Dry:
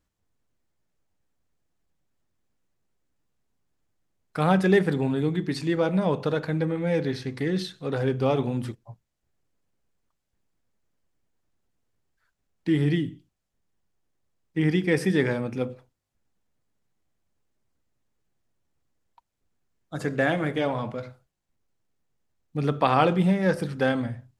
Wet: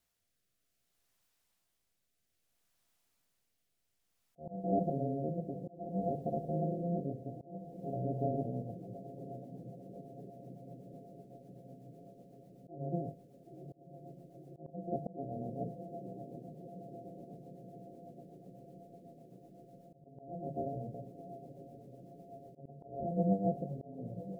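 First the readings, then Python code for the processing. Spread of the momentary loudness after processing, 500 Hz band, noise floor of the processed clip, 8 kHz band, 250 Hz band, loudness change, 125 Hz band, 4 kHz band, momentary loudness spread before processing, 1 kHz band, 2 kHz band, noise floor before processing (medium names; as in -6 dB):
20 LU, -12.5 dB, -81 dBFS, under -25 dB, -13.0 dB, -14.0 dB, -12.0 dB, under -35 dB, 13 LU, -12.5 dB, under -40 dB, -80 dBFS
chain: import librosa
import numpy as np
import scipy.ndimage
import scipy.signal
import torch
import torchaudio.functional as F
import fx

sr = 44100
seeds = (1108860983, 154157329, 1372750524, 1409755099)

y = np.r_[np.sort(x[:len(x) // 64 * 64].reshape(-1, 64), axis=1).ravel(), x[len(x) // 64 * 64:]]
y = scipy.signal.sosfilt(scipy.signal.cheby1(6, 3, 740.0, 'lowpass', fs=sr, output='sos'), y)
y = fx.hum_notches(y, sr, base_hz=50, count=3)
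y = fx.echo_diffused(y, sr, ms=978, feedback_pct=73, wet_db=-13.0)
y = fx.quant_dither(y, sr, seeds[0], bits=12, dither='triangular')
y = fx.auto_swell(y, sr, attack_ms=390.0)
y = fx.rotary_switch(y, sr, hz=0.6, then_hz=8.0, switch_at_s=7.74)
y = y * 10.0 ** (-6.0 / 20.0)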